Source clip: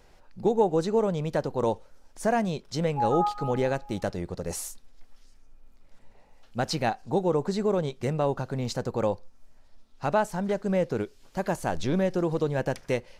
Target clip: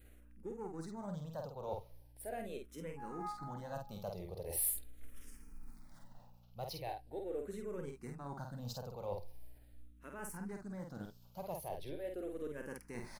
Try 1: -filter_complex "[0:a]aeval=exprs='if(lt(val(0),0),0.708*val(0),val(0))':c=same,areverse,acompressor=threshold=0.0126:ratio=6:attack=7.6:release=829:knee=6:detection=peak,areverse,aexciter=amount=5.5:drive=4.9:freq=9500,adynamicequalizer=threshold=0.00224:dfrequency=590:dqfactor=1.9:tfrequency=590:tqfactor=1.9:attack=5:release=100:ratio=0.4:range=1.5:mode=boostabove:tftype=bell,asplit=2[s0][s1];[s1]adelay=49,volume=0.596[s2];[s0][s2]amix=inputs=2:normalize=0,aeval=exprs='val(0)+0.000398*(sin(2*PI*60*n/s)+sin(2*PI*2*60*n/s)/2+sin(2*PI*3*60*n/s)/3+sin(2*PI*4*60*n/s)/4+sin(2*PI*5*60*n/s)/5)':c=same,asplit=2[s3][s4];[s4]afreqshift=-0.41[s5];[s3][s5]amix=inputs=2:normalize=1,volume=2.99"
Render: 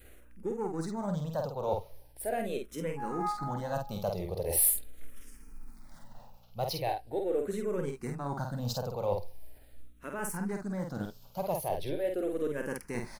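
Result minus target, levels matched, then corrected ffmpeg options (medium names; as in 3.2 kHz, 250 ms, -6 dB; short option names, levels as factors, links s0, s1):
compression: peak gain reduction -10 dB
-filter_complex "[0:a]aeval=exprs='if(lt(val(0),0),0.708*val(0),val(0))':c=same,areverse,acompressor=threshold=0.00316:ratio=6:attack=7.6:release=829:knee=6:detection=peak,areverse,aexciter=amount=5.5:drive=4.9:freq=9500,adynamicequalizer=threshold=0.00224:dfrequency=590:dqfactor=1.9:tfrequency=590:tqfactor=1.9:attack=5:release=100:ratio=0.4:range=1.5:mode=boostabove:tftype=bell,asplit=2[s0][s1];[s1]adelay=49,volume=0.596[s2];[s0][s2]amix=inputs=2:normalize=0,aeval=exprs='val(0)+0.000398*(sin(2*PI*60*n/s)+sin(2*PI*2*60*n/s)/2+sin(2*PI*3*60*n/s)/3+sin(2*PI*4*60*n/s)/4+sin(2*PI*5*60*n/s)/5)':c=same,asplit=2[s3][s4];[s4]afreqshift=-0.41[s5];[s3][s5]amix=inputs=2:normalize=1,volume=2.99"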